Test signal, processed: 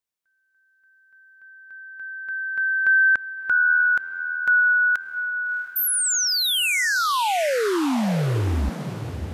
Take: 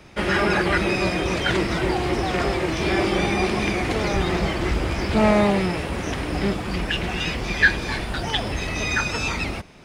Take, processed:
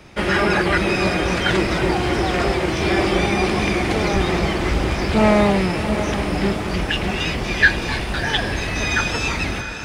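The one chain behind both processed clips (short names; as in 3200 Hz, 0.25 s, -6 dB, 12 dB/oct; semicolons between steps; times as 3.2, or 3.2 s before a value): diffused feedback echo 0.69 s, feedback 42%, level -9 dB; gain +2.5 dB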